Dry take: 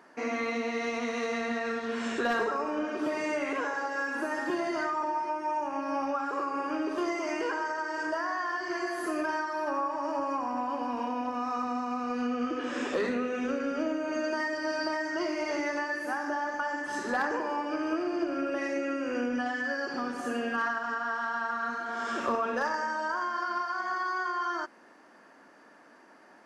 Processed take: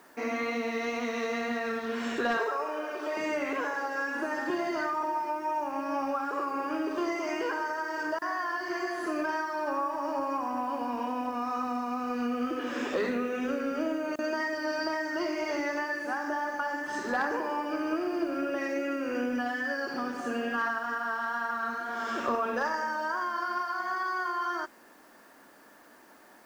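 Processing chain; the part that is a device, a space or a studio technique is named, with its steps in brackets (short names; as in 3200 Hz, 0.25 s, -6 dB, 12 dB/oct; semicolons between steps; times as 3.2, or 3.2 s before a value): worn cassette (LPF 7500 Hz; wow and flutter 19 cents; level dips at 8.19/14.16, 26 ms -28 dB; white noise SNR 33 dB); 2.37–3.17 HPF 390 Hz 24 dB/oct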